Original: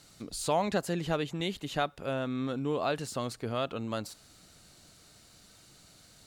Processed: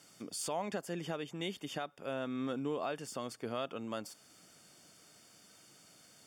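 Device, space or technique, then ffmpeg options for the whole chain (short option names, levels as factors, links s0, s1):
PA system with an anti-feedback notch: -af "highpass=180,asuperstop=centerf=4000:order=12:qfactor=6.9,alimiter=limit=0.0631:level=0:latency=1:release=436,volume=0.794"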